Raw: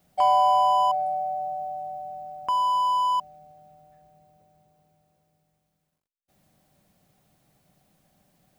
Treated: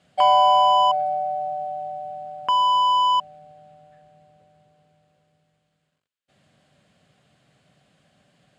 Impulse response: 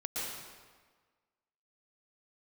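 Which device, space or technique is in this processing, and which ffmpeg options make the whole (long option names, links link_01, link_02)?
car door speaker: -af "highpass=100,equalizer=frequency=190:width_type=q:width=4:gain=-5,equalizer=frequency=330:width_type=q:width=4:gain=-6,equalizer=frequency=840:width_type=q:width=4:gain=-7,equalizer=frequency=1600:width_type=q:width=4:gain=4,equalizer=frequency=3000:width_type=q:width=4:gain=5,equalizer=frequency=5800:width_type=q:width=4:gain=-10,lowpass=frequency=7500:width=0.5412,lowpass=frequency=7500:width=1.3066,volume=6.5dB"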